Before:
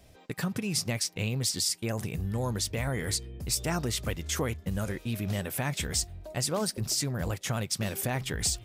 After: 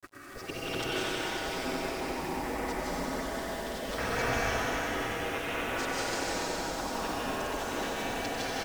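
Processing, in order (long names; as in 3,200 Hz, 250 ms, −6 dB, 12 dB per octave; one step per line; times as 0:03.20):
slices reordered back to front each 102 ms, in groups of 4
camcorder AGC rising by 56 dB per second
auto-filter low-pass saw up 5.4 Hz 310–3,400 Hz
comb filter 6.2 ms, depth 92%
gate on every frequency bin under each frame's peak −15 dB weak
bit reduction 9 bits
bass and treble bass 0 dB, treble +11 dB
granular cloud
high-shelf EQ 2,200 Hz −8 dB
on a send: feedback echo with a high-pass in the loop 93 ms, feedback 81%, high-pass 200 Hz, level −7.5 dB
on the sum: dense smooth reverb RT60 4.6 s, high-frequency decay 0.7×, pre-delay 120 ms, DRR −8.5 dB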